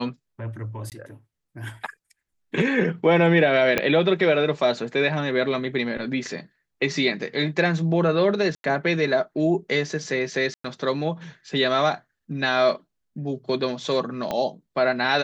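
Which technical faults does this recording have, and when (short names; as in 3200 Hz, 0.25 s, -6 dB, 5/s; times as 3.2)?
0.9–0.92 gap 18 ms
3.78 pop -6 dBFS
8.55–8.64 gap 92 ms
10.54–10.64 gap 0.104 s
14.31 pop -13 dBFS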